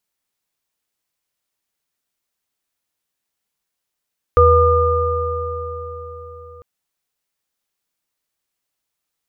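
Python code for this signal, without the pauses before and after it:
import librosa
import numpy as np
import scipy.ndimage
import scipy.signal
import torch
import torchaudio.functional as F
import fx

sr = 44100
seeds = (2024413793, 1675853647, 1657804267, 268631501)

y = fx.additive_free(sr, length_s=2.25, hz=82.5, level_db=-13, upper_db=(3.5, 2.0), decay_s=4.45, upper_decays_s=(4.49, 4.05), upper_hz=(485.0, 1210.0))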